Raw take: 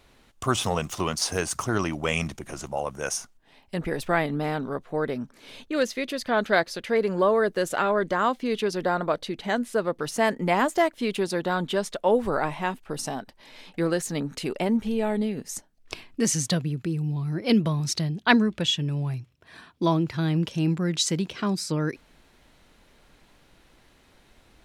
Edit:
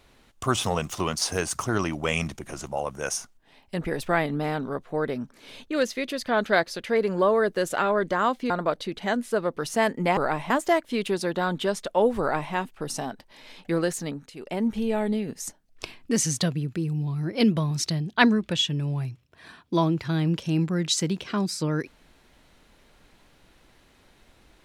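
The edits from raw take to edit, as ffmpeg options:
ffmpeg -i in.wav -filter_complex "[0:a]asplit=6[link_01][link_02][link_03][link_04][link_05][link_06];[link_01]atrim=end=8.502[link_07];[link_02]atrim=start=8.918:end=10.592[link_08];[link_03]atrim=start=12.288:end=12.622[link_09];[link_04]atrim=start=10.588:end=14.4,asetpts=PTS-STARTPTS,afade=type=out:start_time=3.432:duration=0.38:silence=0.211349[link_10];[link_05]atrim=start=14.4:end=14.44,asetpts=PTS-STARTPTS,volume=-13.5dB[link_11];[link_06]atrim=start=14.44,asetpts=PTS-STARTPTS,afade=type=in:duration=0.38:silence=0.211349[link_12];[link_07][link_08]acrossfade=duration=0.004:curve1=hsin:curve2=hsin[link_13];[link_13][link_09]acrossfade=duration=0.004:curve1=hsin:curve2=hsin[link_14];[link_10][link_11][link_12]concat=n=3:v=0:a=1[link_15];[link_14][link_15]acrossfade=duration=0.004:curve1=hsin:curve2=hsin" out.wav

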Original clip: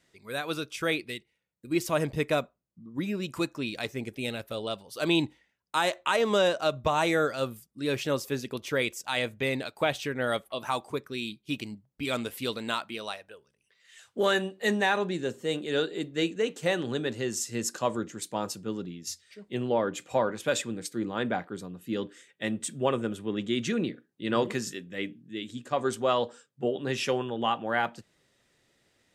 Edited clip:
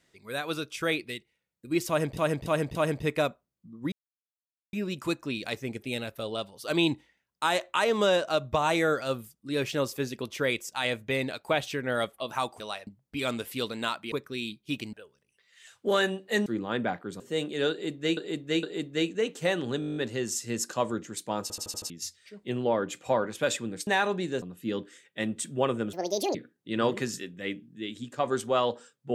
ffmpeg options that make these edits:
ffmpeg -i in.wav -filter_complex "[0:a]asplit=31[link_01][link_02][link_03][link_04][link_05][link_06][link_07][link_08][link_09][link_10][link_11][link_12][link_13][link_14][link_15][link_16][link_17][link_18][link_19][link_20][link_21][link_22][link_23][link_24][link_25][link_26][link_27][link_28][link_29][link_30][link_31];[link_01]atrim=end=2.172[link_32];[link_02]atrim=start=1.878:end=2.172[link_33];[link_03]atrim=start=1.878:end=2.172[link_34];[link_04]atrim=start=1.878:end=3.05,asetpts=PTS-STARTPTS,afade=type=out:start_time=1.168:duration=0.004:curve=hsin,apad=pad_dur=0.81[link_35];[link_05]atrim=start=3.05:end=10.922,asetpts=PTS-STARTPTS,afade=type=in:duration=0.004:curve=hsin[link_36];[link_06]atrim=start=12.978:end=13.252[link_37];[link_07]atrim=start=11.728:end=12.982[link_38];[link_08]atrim=start=10.918:end=11.732[link_39];[link_09]atrim=start=13.248:end=14.782[link_40];[link_10]atrim=start=20.918:end=21.662[link_41];[link_11]atrim=start=15.328:end=16.302[link_42];[link_12]atrim=start=15.838:end=16.302[link_43];[link_13]atrim=start=15.838:end=17.032[link_44];[link_14]atrim=start=17.008:end=17.032[link_45];[link_15]atrim=start=17.008:end=17.032[link_46];[link_16]atrim=start=17.008:end=17.032[link_47];[link_17]atrim=start=17.008:end=17.032[link_48];[link_18]atrim=start=17.008:end=17.032[link_49];[link_19]atrim=start=17.008:end=17.032[link_50];[link_20]atrim=start=17.008:end=17.032[link_51];[link_21]atrim=start=17.008:end=18.552[link_52];[link_22]atrim=start=18.468:end=18.552[link_53];[link_23]atrim=start=18.468:end=18.552[link_54];[link_24]atrim=start=18.468:end=18.552[link_55];[link_25]atrim=start=18.468:end=18.552[link_56];[link_26]atrim=start=18.468:end=18.552[link_57];[link_27]atrim=start=18.948:end=20.922[link_58];[link_28]atrim=start=14.778:end=15.332[link_59];[link_29]atrim=start=21.658:end=23.174[link_60];[link_30]atrim=start=23.17:end=23.88,asetpts=PTS-STARTPTS,asetrate=74970,aresample=44100,atrim=end_sample=18418,asetpts=PTS-STARTPTS[link_61];[link_31]atrim=start=23.876[link_62];[link_32][link_33]acrossfade=duration=0.004:curve1=hsin:curve2=hsin[link_63];[link_63][link_34]acrossfade=duration=0.004:curve1=hsin:curve2=hsin[link_64];[link_35][link_36]concat=n=2:v=0:a=1[link_65];[link_64][link_65]acrossfade=duration=0.004:curve1=hsin:curve2=hsin[link_66];[link_66][link_37]acrossfade=duration=0.004:curve1=hsin:curve2=hsin[link_67];[link_67][link_38]acrossfade=duration=0.004:curve1=hsin:curve2=hsin[link_68];[link_68][link_39]acrossfade=duration=0.004:curve1=hsin:curve2=hsin[link_69];[link_69][link_40]acrossfade=duration=0.004:curve1=hsin:curve2=hsin[link_70];[link_70][link_41]acrossfade=duration=0.004:curve1=hsin:curve2=hsin[link_71];[link_71][link_42]acrossfade=duration=0.004:curve1=hsin:curve2=hsin[link_72];[link_72][link_43]acrossfade=duration=0.004:curve1=hsin:curve2=hsin[link_73];[link_73][link_44]acrossfade=duration=0.004:curve1=hsin:curve2=hsin[link_74];[link_74][link_45]acrossfade=duration=0.004:curve1=hsin:curve2=hsin[link_75];[link_75][link_46]acrossfade=duration=0.004:curve1=hsin:curve2=hsin[link_76];[link_76][link_47]acrossfade=duration=0.004:curve1=hsin:curve2=hsin[link_77];[link_77][link_48]acrossfade=duration=0.004:curve1=hsin:curve2=hsin[link_78];[link_78][link_49]acrossfade=duration=0.004:curve1=hsin:curve2=hsin[link_79];[link_79][link_50]acrossfade=duration=0.004:curve1=hsin:curve2=hsin[link_80];[link_80][link_51]acrossfade=duration=0.004:curve1=hsin:curve2=hsin[link_81];[link_81][link_52]acrossfade=duration=0.004:curve1=hsin:curve2=hsin[link_82];[link_82][link_53]acrossfade=duration=0.004:curve1=hsin:curve2=hsin[link_83];[link_83][link_54]acrossfade=duration=0.004:curve1=hsin:curve2=hsin[link_84];[link_84][link_55]acrossfade=duration=0.004:curve1=hsin:curve2=hsin[link_85];[link_85][link_56]acrossfade=duration=0.004:curve1=hsin:curve2=hsin[link_86];[link_86][link_57]acrossfade=duration=0.004:curve1=hsin:curve2=hsin[link_87];[link_87][link_58]acrossfade=duration=0.004:curve1=hsin:curve2=hsin[link_88];[link_88][link_59]acrossfade=duration=0.004:curve1=hsin:curve2=hsin[link_89];[link_89][link_60]acrossfade=duration=0.004:curve1=hsin:curve2=hsin[link_90];[link_90][link_61]acrossfade=duration=0.004:curve1=hsin:curve2=hsin[link_91];[link_91][link_62]acrossfade=duration=0.004:curve1=hsin:curve2=hsin" out.wav

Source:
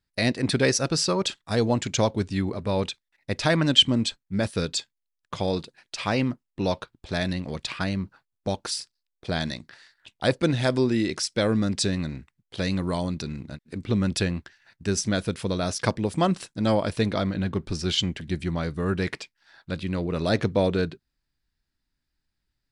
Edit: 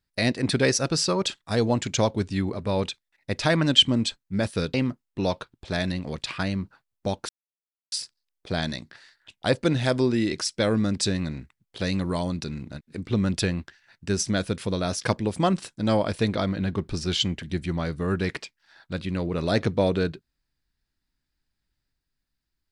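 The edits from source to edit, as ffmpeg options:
ffmpeg -i in.wav -filter_complex "[0:a]asplit=3[link_01][link_02][link_03];[link_01]atrim=end=4.742[link_04];[link_02]atrim=start=6.148:end=8.7,asetpts=PTS-STARTPTS,afade=type=out:start_time=2.548:duration=0.004:curve=hsin,apad=pad_dur=0.63[link_05];[link_03]atrim=start=8.7,asetpts=PTS-STARTPTS,afade=type=in:duration=0.004:curve=hsin[link_06];[link_05][link_06]concat=n=2:v=0:a=1[link_07];[link_04][link_07]acrossfade=duration=0.004:curve1=hsin:curve2=hsin" out.wav

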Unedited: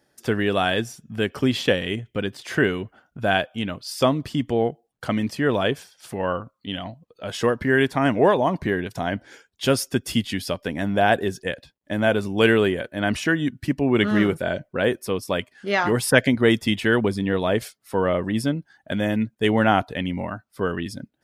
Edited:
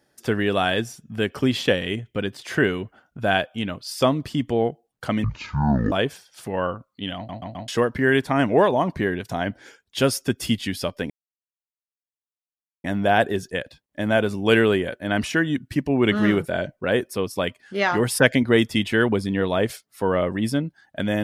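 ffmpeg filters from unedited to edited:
ffmpeg -i in.wav -filter_complex "[0:a]asplit=8[link_01][link_02][link_03][link_04][link_05][link_06][link_07][link_08];[link_01]atrim=end=5.244[link_09];[link_02]atrim=start=5.24:end=5.58,asetpts=PTS-STARTPTS,asetrate=22050,aresample=44100[link_10];[link_03]atrim=start=5.576:end=6.952[link_11];[link_04]atrim=start=6.818:end=6.952[link_12];[link_05]atrim=start=6.818:end=6.952[link_13];[link_06]atrim=start=6.818:end=6.952[link_14];[link_07]atrim=start=7.338:end=10.76,asetpts=PTS-STARTPTS,afade=type=out:start_time=3.418:duration=0.004:curve=hsin,apad=pad_dur=1.74[link_15];[link_08]atrim=start=10.76,asetpts=PTS-STARTPTS,afade=type=in:duration=0.004:curve=hsin[link_16];[link_09][link_10]acrossfade=duration=0.004:curve1=hsin:curve2=hsin[link_17];[link_17][link_11]acrossfade=duration=0.004:curve1=hsin:curve2=hsin[link_18];[link_18][link_12]acrossfade=duration=0.004:curve1=hsin:curve2=hsin[link_19];[link_19][link_13]acrossfade=duration=0.004:curve1=hsin:curve2=hsin[link_20];[link_20][link_14]acrossfade=duration=0.004:curve1=hsin:curve2=hsin[link_21];[link_15][link_16]concat=n=2:v=0:a=1[link_22];[link_21][link_22]acrossfade=duration=0.004:curve1=hsin:curve2=hsin" out.wav

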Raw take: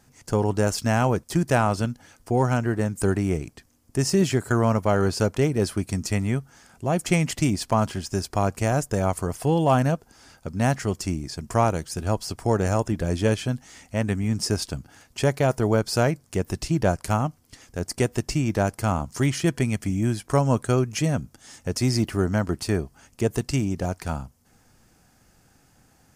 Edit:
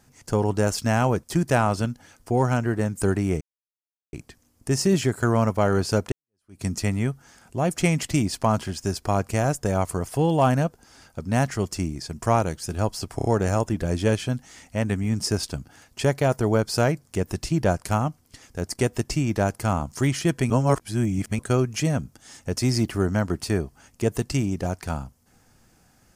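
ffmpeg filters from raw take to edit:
ffmpeg -i in.wav -filter_complex "[0:a]asplit=8[link_01][link_02][link_03][link_04][link_05][link_06][link_07][link_08];[link_01]atrim=end=3.41,asetpts=PTS-STARTPTS,afade=type=out:start_time=3.406:duration=0.004:curve=hsin,apad=pad_dur=0.72[link_09];[link_02]atrim=start=3.41:end=5.4,asetpts=PTS-STARTPTS,afade=type=in:duration=0.004:curve=hsin,afade=type=out:start_time=1.986:duration=0.004:curve=hsin[link_10];[link_03]atrim=start=5.4:end=12.472,asetpts=PTS-STARTPTS,afade=type=in:duration=0.51:curve=exp[link_11];[link_04]atrim=start=12.438:end=12.472[link_12];[link_05]atrim=start=12.438:end=12.472[link_13];[link_06]atrim=start=12.438:end=19.692[link_14];[link_07]atrim=start=19.688:end=20.582,asetpts=PTS-STARTPTS,areverse[link_15];[link_08]atrim=start=20.578[link_16];[link_09][link_10][link_11]concat=n=3:v=0:a=1[link_17];[link_17][link_12]acrossfade=duration=0.004:curve1=hsin:curve2=hsin[link_18];[link_18][link_13]acrossfade=duration=0.004:curve1=hsin:curve2=hsin[link_19];[link_19][link_14]acrossfade=duration=0.004:curve1=hsin:curve2=hsin[link_20];[link_20][link_15]acrossfade=duration=0.004:curve1=hsin:curve2=hsin[link_21];[link_21][link_16]acrossfade=duration=0.004:curve1=hsin:curve2=hsin" out.wav

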